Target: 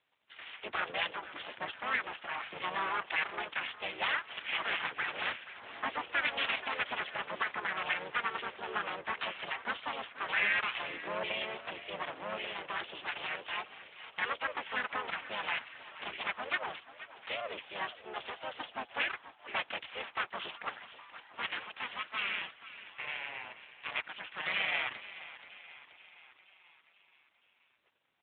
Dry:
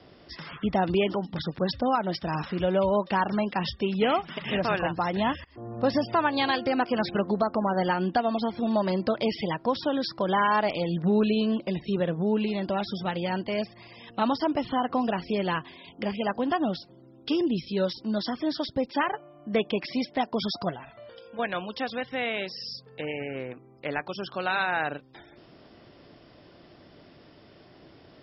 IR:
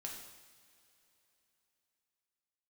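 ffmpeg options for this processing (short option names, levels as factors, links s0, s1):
-filter_complex "[0:a]agate=range=0.141:threshold=0.00355:ratio=16:detection=peak,aresample=8000,aeval=exprs='abs(val(0))':c=same,aresample=44100,asplit=3[s0][s1][s2];[s1]asetrate=37084,aresample=44100,atempo=1.18921,volume=1[s3];[s2]asetrate=66075,aresample=44100,atempo=0.66742,volume=0.126[s4];[s0][s3][s4]amix=inputs=3:normalize=0,bandpass=f=2700:t=q:w=0.82:csg=0,asplit=2[s5][s6];[s6]asplit=6[s7][s8][s9][s10][s11][s12];[s7]adelay=480,afreqshift=44,volume=0.178[s13];[s8]adelay=960,afreqshift=88,volume=0.101[s14];[s9]adelay=1440,afreqshift=132,volume=0.0575[s15];[s10]adelay=1920,afreqshift=176,volume=0.0331[s16];[s11]adelay=2400,afreqshift=220,volume=0.0188[s17];[s12]adelay=2880,afreqshift=264,volume=0.0107[s18];[s13][s14][s15][s16][s17][s18]amix=inputs=6:normalize=0[s19];[s5][s19]amix=inputs=2:normalize=0" -ar 8000 -c:a libopencore_amrnb -b:a 12200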